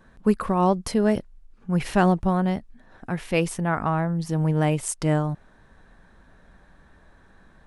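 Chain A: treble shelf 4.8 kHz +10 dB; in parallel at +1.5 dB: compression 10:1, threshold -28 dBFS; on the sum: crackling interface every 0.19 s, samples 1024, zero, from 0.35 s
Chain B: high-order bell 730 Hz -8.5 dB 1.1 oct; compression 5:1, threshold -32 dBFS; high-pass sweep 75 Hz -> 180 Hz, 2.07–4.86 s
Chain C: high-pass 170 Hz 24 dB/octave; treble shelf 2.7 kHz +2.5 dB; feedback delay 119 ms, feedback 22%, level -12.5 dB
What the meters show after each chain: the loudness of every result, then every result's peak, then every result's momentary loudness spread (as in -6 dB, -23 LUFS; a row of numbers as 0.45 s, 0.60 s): -21.0 LUFS, -33.0 LUFS, -24.5 LUFS; -3.0 dBFS, -17.5 dBFS, -5.0 dBFS; 9 LU, 9 LU, 13 LU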